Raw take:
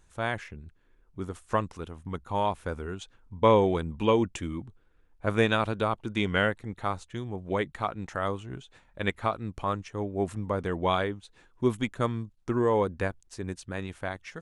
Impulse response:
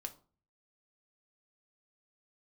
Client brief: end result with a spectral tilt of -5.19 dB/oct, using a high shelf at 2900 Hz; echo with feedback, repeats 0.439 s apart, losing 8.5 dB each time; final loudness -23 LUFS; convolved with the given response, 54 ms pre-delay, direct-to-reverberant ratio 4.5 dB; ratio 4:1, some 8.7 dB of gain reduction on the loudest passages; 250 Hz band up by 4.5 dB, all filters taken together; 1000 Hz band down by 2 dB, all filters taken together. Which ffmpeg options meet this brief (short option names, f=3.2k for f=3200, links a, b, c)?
-filter_complex "[0:a]equalizer=f=250:t=o:g=6,equalizer=f=1k:t=o:g=-3.5,highshelf=f=2.9k:g=6.5,acompressor=threshold=-25dB:ratio=4,aecho=1:1:439|878|1317|1756:0.376|0.143|0.0543|0.0206,asplit=2[a][b];[1:a]atrim=start_sample=2205,adelay=54[c];[b][c]afir=irnorm=-1:irlink=0,volume=-1.5dB[d];[a][d]amix=inputs=2:normalize=0,volume=7.5dB"